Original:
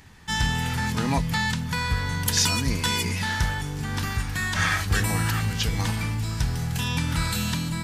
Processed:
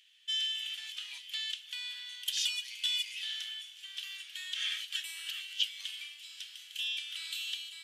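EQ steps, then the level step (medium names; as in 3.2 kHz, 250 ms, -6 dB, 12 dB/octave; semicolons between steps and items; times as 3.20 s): ladder high-pass 2.9 kHz, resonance 75%; peaking EQ 4.8 kHz -4.5 dB 0.8 oct; treble shelf 6.9 kHz -7 dB; +2.0 dB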